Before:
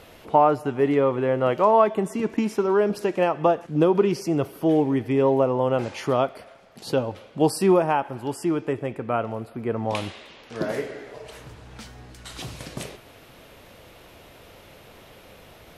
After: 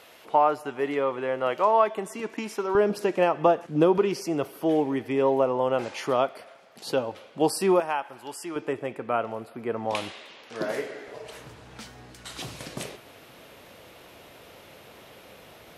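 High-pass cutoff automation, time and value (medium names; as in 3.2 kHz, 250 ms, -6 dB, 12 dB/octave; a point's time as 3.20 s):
high-pass 6 dB/octave
780 Hz
from 2.75 s 190 Hz
from 3.98 s 410 Hz
from 7.80 s 1.4 kHz
from 8.56 s 390 Hz
from 11.08 s 160 Hz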